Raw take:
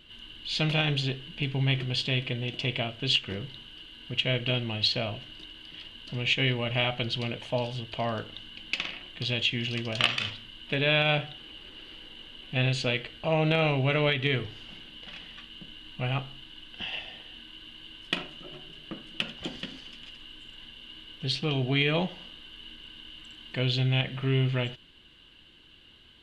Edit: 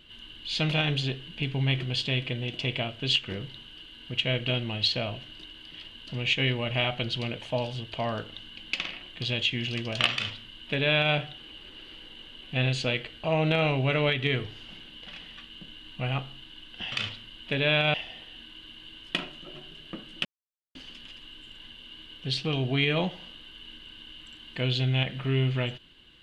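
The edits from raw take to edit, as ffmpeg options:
-filter_complex "[0:a]asplit=5[a][b][c][d][e];[a]atrim=end=16.922[f];[b]atrim=start=10.128:end=11.152[g];[c]atrim=start=16.918:end=19.23,asetpts=PTS-STARTPTS,afade=t=out:st=2.308:d=0.004:c=hsin[h];[d]atrim=start=19.23:end=19.73,asetpts=PTS-STARTPTS,volume=0[i];[e]atrim=start=19.73,asetpts=PTS-STARTPTS,afade=t=in:d=0.004:c=hsin[j];[f][g]acrossfade=d=0.004:c1=hsin:c2=hsin[k];[h][i][j]concat=n=3:v=0:a=1[l];[k][l]acrossfade=d=0.004:c1=hsin:c2=hsin"

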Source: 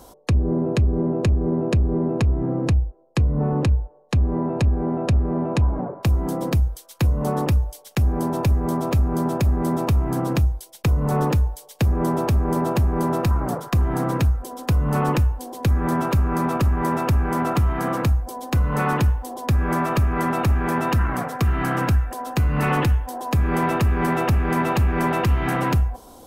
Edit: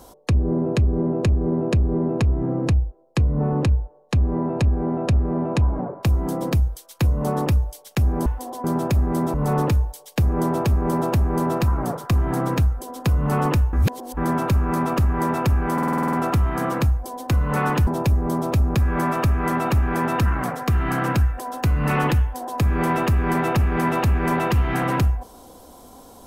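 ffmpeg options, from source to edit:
-filter_complex "[0:a]asplit=16[a][b][c][d][e][f][g][h][i][j][k][l][m][n][o][p];[a]atrim=end=8.262[q];[b]atrim=start=19.098:end=19.482[r];[c]atrim=start=9.138:end=9.842[s];[d]atrim=start=10.968:end=15.362[t];[e]atrim=start=15.358:end=15.802,asetpts=PTS-STARTPTS,areverse[u];[f]atrim=start=15.798:end=17.412[v];[g]atrim=start=17.358:end=17.412[w];[h]atrim=start=17.358:end=17.412[x];[i]atrim=start=17.358:end=17.412[y];[j]atrim=start=17.358:end=17.412[z];[k]atrim=start=17.358:end=17.412[aa];[l]atrim=start=17.358:end=17.412[ab];[m]atrim=start=17.358:end=17.412[ac];[n]atrim=start=17.358:end=19.102[ad];[o]atrim=start=8.258:end=9.142[ae];[p]atrim=start=19.478[af];[q][r]acrossfade=d=0.004:c1=hsin:c2=hsin[ag];[ag][s]acrossfade=d=0.004:c1=hsin:c2=hsin[ah];[ah][t]acrossfade=d=0.004:c1=hsin:c2=hsin[ai];[ai][u]acrossfade=d=0.004:c1=hsin:c2=hsin[aj];[aj][v]acrossfade=d=0.004:c1=hsin:c2=hsin[ak];[ak][w]acrossfade=d=0.004:c1=hsin:c2=hsin[al];[al][x]acrossfade=d=0.004:c1=hsin:c2=hsin[am];[am][y]acrossfade=d=0.004:c1=hsin:c2=hsin[an];[an][z]acrossfade=d=0.004:c1=hsin:c2=hsin[ao];[ao][aa]acrossfade=d=0.004:c1=hsin:c2=hsin[ap];[ap][ab]acrossfade=d=0.004:c1=hsin:c2=hsin[aq];[aq][ac]acrossfade=d=0.004:c1=hsin:c2=hsin[ar];[ar][ad]acrossfade=d=0.004:c1=hsin:c2=hsin[as];[as][ae]acrossfade=d=0.004:c1=hsin:c2=hsin[at];[at][af]acrossfade=d=0.004:c1=hsin:c2=hsin"

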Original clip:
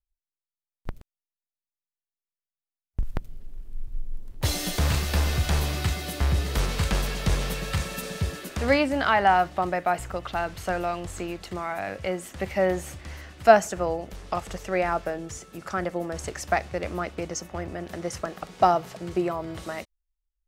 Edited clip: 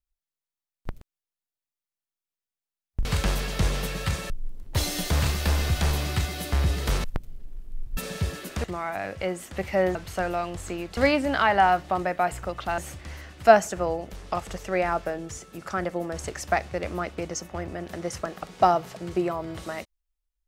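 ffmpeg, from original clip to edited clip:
-filter_complex "[0:a]asplit=9[a][b][c][d][e][f][g][h][i];[a]atrim=end=3.052[j];[b]atrim=start=6.718:end=7.972[k];[c]atrim=start=3.978:end=6.722[l];[d]atrim=start=3.048:end=3.982[m];[e]atrim=start=7.968:end=8.642[n];[f]atrim=start=11.468:end=12.782[o];[g]atrim=start=10.448:end=11.472[p];[h]atrim=start=8.638:end=10.452[q];[i]atrim=start=12.778[r];[j][k]acrossfade=d=0.004:c1=hsin:c2=hsin[s];[s][l]acrossfade=d=0.004:c1=hsin:c2=hsin[t];[t][m]acrossfade=d=0.004:c1=hsin:c2=hsin[u];[u][n]acrossfade=d=0.004:c1=hsin:c2=hsin[v];[v][o]acrossfade=d=0.004:c1=hsin:c2=hsin[w];[w][p]acrossfade=d=0.004:c1=hsin:c2=hsin[x];[x][q]acrossfade=d=0.004:c1=hsin:c2=hsin[y];[y][r]acrossfade=d=0.004:c1=hsin:c2=hsin"

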